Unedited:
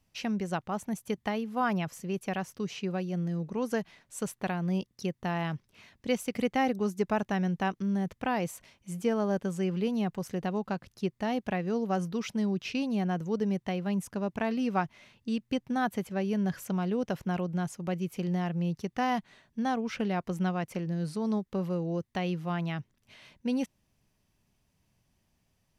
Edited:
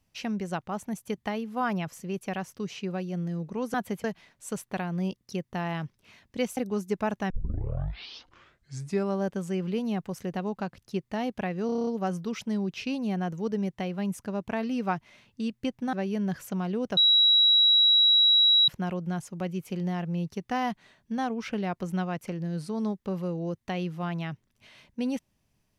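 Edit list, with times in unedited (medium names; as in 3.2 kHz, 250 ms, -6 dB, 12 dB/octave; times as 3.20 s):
6.27–6.66 s: delete
7.39 s: tape start 1.95 s
11.75 s: stutter 0.03 s, 8 plays
15.81–16.11 s: move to 3.74 s
17.15 s: add tone 3.88 kHz -16.5 dBFS 1.71 s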